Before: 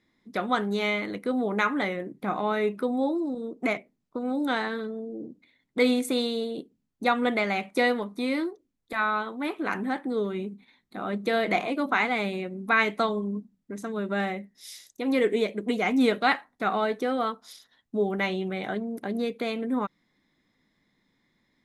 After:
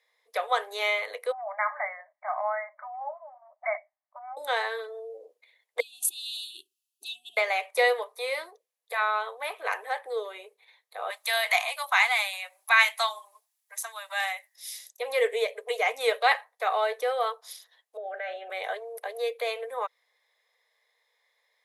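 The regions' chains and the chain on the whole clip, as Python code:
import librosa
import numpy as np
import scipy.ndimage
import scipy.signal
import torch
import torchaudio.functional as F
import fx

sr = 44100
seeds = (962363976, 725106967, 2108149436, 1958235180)

y = fx.chain(x, sr, fx.brickwall_bandpass(low_hz=570.0, high_hz=2300.0),
    fx.air_absorb(metres=330.0), at=(1.32, 4.37))
y = fx.chain(y, sr, fx.brickwall_bandstop(low_hz=390.0, high_hz=2500.0),
    fx.over_compress(threshold_db=-34.0, ratio=-1.0), at=(5.8, 7.37))
y = fx.chain(y, sr, fx.steep_highpass(hz=740.0, slope=36),
    fx.high_shelf(hz=3600.0, db=12.0), at=(11.1, 14.56))
y = fx.chain(y, sr, fx.double_bandpass(hz=1000.0, octaves=1.2),
    fx.env_flatten(amount_pct=100), at=(17.97, 18.5))
y = scipy.signal.sosfilt(scipy.signal.cheby1(6, 1.0, 460.0, 'highpass', fs=sr, output='sos'), y)
y = fx.peak_eq(y, sr, hz=11000.0, db=8.5, octaves=0.49)
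y = fx.notch(y, sr, hz=1400.0, q=6.9)
y = y * 10.0 ** (2.0 / 20.0)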